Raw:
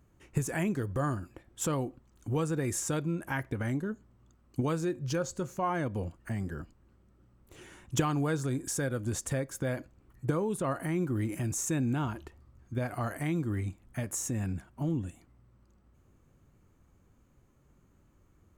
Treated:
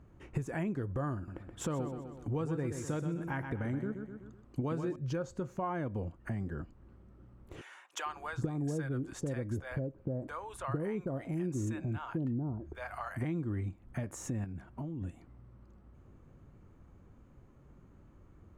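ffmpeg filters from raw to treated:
ffmpeg -i in.wav -filter_complex "[0:a]asettb=1/sr,asplit=3[link_01][link_02][link_03];[link_01]atrim=end=1.154[link_04];[link_02]atrim=start=1.15:end=4.96,asetpts=PTS-STARTPTS,afade=type=in:duration=0.004:curve=qsin,afade=type=out:start_time=3.806:duration=0.004:curve=qsin,aecho=1:1:126|252|378|504:0.376|0.147|0.0572|0.0223,atrim=end_sample=168021[link_05];[link_03]atrim=start=4.956[link_06];[link_04][link_05]acrossfade=duration=0.004:curve1=hsin:curve2=qsin[link_07];[link_07][link_06]acrossfade=duration=0.004:curve1=qsin:curve2=hsin,asettb=1/sr,asplit=3[link_08][link_09][link_10];[link_08]atrim=end=7.614[link_11];[link_09]atrim=start=7.61:end=13.25,asetpts=PTS-STARTPTS,afade=type=in:duration=0.004:curve=qsin,afade=type=out:start_time=5.636:duration=0.004:curve=qsin,acrossover=split=740[link_12][link_13];[link_12]adelay=450[link_14];[link_14][link_13]amix=inputs=2:normalize=0,atrim=end_sample=248724[link_15];[link_10]atrim=start=13.246[link_16];[link_11][link_15]acrossfade=duration=0.004:curve1=hsin:curve2=qsin[link_17];[link_17][link_16]acrossfade=duration=0.004:curve1=qsin:curve2=hsin,asettb=1/sr,asplit=3[link_18][link_19][link_20];[link_18]atrim=end=14.444[link_21];[link_19]atrim=start=14.44:end=15.02,asetpts=PTS-STARTPTS,afade=type=in:duration=0.004:curve=qsin,afade=type=out:start_time=0.576:duration=0.004:curve=qsin,acompressor=threshold=-38dB:ratio=6:attack=3.2:release=140:knee=1:detection=peak[link_22];[link_20]atrim=start=15.016[link_23];[link_21][link_22]acrossfade=duration=0.004:curve1=hsin:curve2=qsin[link_24];[link_24][link_23]acrossfade=duration=0.004:curve1=qsin:curve2=hsin,lowpass=frequency=1500:poles=1,acompressor=threshold=-47dB:ratio=2,volume=6.5dB" out.wav

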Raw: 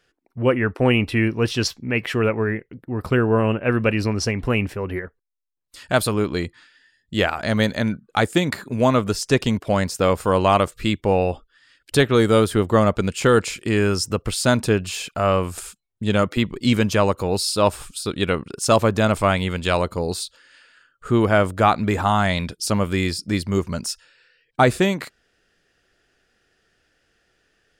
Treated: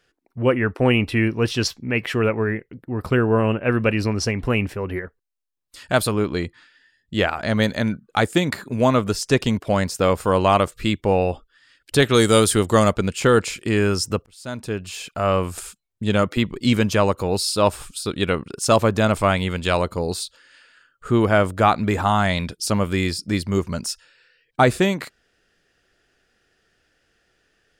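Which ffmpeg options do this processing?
ffmpeg -i in.wav -filter_complex "[0:a]asettb=1/sr,asplit=3[link_01][link_02][link_03];[link_01]atrim=end=6.114[link_04];[link_02]atrim=start=6.11:end=7.62,asetpts=PTS-STARTPTS,afade=type=in:duration=0.004:curve=qsin,afade=type=out:start_time=1.506:duration=0.004:curve=qsin,highshelf=frequency=6300:gain=-6[link_05];[link_03]atrim=start=7.616[link_06];[link_04][link_05]acrossfade=duration=0.004:curve1=hsin:curve2=qsin[link_07];[link_07][link_06]acrossfade=duration=0.004:curve1=qsin:curve2=hsin,asettb=1/sr,asplit=3[link_08][link_09][link_10];[link_08]atrim=end=12.024[link_11];[link_09]atrim=start=12.02:end=12.94,asetpts=PTS-STARTPTS,afade=type=in:duration=0.004:curve=qsin,afade=type=out:start_time=0.916:duration=0.004:curve=qsin,equalizer=frequency=8200:width=0.45:gain=13.5[link_12];[link_10]atrim=start=12.936[link_13];[link_11][link_12]acrossfade=duration=0.004:curve1=hsin:curve2=qsin[link_14];[link_14][link_13]acrossfade=duration=0.004:curve1=qsin:curve2=hsin,asplit=2[link_15][link_16];[link_15]atrim=end=14.26,asetpts=PTS-STARTPTS,afade=type=out:start_time=14.256:duration=0.004:curve=hsin[link_17];[link_16]atrim=start=14.26,asetpts=PTS-STARTPTS,afade=type=in:duration=1.15[link_18];[link_17][link_18]concat=n=2:v=0:a=1" out.wav

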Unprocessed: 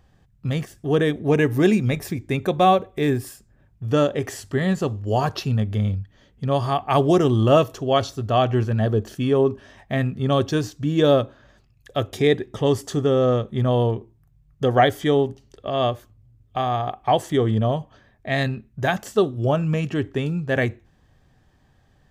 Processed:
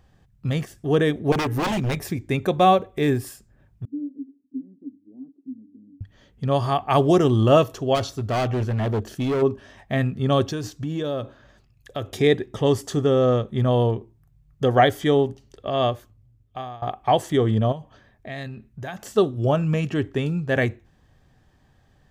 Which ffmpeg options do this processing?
ffmpeg -i in.wav -filter_complex "[0:a]asettb=1/sr,asplit=3[link_01][link_02][link_03];[link_01]atrim=end=1.324[link_04];[link_02]atrim=start=1.32:end=2,asetpts=PTS-STARTPTS,afade=type=in:duration=0.004:curve=qsin,afade=type=out:start_time=0.676:duration=0.004:curve=qsin,aeval=exprs='0.126*(abs(mod(val(0)/0.126+3,4)-2)-1)':channel_layout=same[link_05];[link_03]atrim=start=1.996[link_06];[link_04][link_05]acrossfade=duration=0.004:curve1=hsin:curve2=qsin[link_07];[link_07][link_06]acrossfade=duration=0.004:curve1=qsin:curve2=hsin,asettb=1/sr,asplit=3[link_08][link_09][link_10];[link_08]atrim=end=3.854[link_11];[link_09]atrim=start=3.85:end=6.01,asetpts=PTS-STARTPTS,afade=type=in:duration=0.004:curve=qsin,afade=type=out:start_time=2.156:duration=0.004:curve=qsin,asuperpass=centerf=270:order=4:qfactor=7.5[link_12];[link_10]atrim=start=6.006[link_13];[link_11][link_12]acrossfade=duration=0.004:curve1=hsin:curve2=qsin[link_14];[link_14][link_13]acrossfade=duration=0.004:curve1=qsin:curve2=hsin,asplit=3[link_15][link_16][link_17];[link_15]afade=type=out:start_time=7.94:duration=0.02[link_18];[link_16]asoftclip=type=hard:threshold=-20dB,afade=type=in:start_time=7.94:duration=0.02,afade=type=out:start_time=9.41:duration=0.02[link_19];[link_17]afade=type=in:start_time=9.41:duration=0.02[link_20];[link_18][link_19][link_20]amix=inputs=3:normalize=0,asettb=1/sr,asplit=3[link_21][link_22][link_23];[link_21]atrim=end=10.464[link_24];[link_22]atrim=start=10.46:end=12.13,asetpts=PTS-STARTPTS,afade=type=in:duration=0.004:curve=qsin,afade=type=out:start_time=1.666:duration=0.004:curve=qsin,acompressor=threshold=-24dB:ratio=5:attack=3.2:release=140:knee=1:detection=peak[link_25];[link_23]atrim=start=12.126[link_26];[link_24][link_25]acrossfade=duration=0.004:curve1=hsin:curve2=qsin[link_27];[link_27][link_26]acrossfade=duration=0.004:curve1=qsin:curve2=hsin,asettb=1/sr,asplit=3[link_28][link_29][link_30];[link_28]atrim=end=17.724[link_31];[link_29]atrim=start=17.72:end=19.16,asetpts=PTS-STARTPTS,afade=type=in:duration=0.004:curve=qsin,afade=type=out:start_time=1.436:duration=0.004:curve=qsin,acompressor=threshold=-35dB:ratio=2.5:attack=3.2:release=140:knee=1:detection=peak[link_32];[link_30]atrim=start=19.156[link_33];[link_31][link_32]acrossfade=duration=0.004:curve1=hsin:curve2=qsin[link_34];[link_34][link_33]acrossfade=duration=0.004:curve1=qsin:curve2=hsin,asplit=2[link_35][link_36];[link_35]atrim=end=16.82,asetpts=PTS-STARTPTS,afade=type=out:start_time=15.71:duration=1.11:curve=qsin:silence=0.0794328[link_37];[link_36]atrim=start=16.82,asetpts=PTS-STARTPTS,afade=type=in:duration=0.004:curve=hsin:silence=0.0794328[link_38];[link_37][link_38]concat=n=2:v=0:a=1" out.wav

